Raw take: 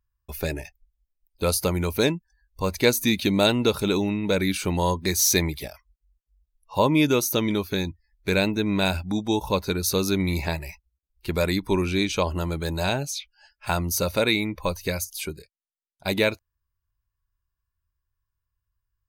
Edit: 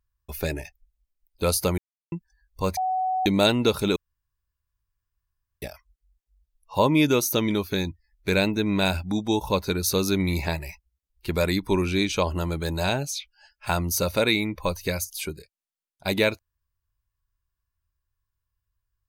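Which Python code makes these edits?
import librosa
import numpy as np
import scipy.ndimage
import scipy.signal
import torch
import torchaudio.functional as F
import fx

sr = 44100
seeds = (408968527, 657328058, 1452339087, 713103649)

y = fx.edit(x, sr, fx.silence(start_s=1.78, length_s=0.34),
    fx.bleep(start_s=2.77, length_s=0.49, hz=748.0, db=-22.0),
    fx.room_tone_fill(start_s=3.96, length_s=1.66), tone=tone)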